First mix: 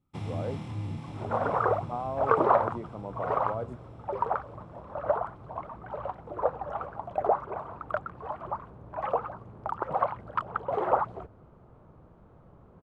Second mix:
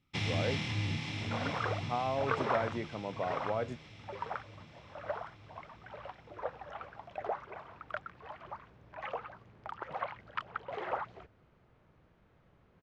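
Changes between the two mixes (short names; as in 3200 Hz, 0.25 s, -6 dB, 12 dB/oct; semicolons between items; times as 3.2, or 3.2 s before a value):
second sound -11.5 dB; master: add band shelf 3300 Hz +15.5 dB 2.3 oct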